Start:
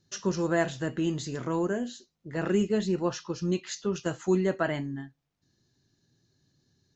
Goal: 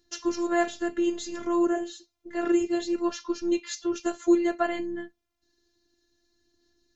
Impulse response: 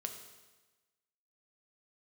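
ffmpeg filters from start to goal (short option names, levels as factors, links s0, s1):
-af "aphaser=in_gain=1:out_gain=1:delay=2.7:decay=0.25:speed=0.6:type=sinusoidal,afftfilt=real='hypot(re,im)*cos(PI*b)':imag='0':win_size=512:overlap=0.75,volume=1.68"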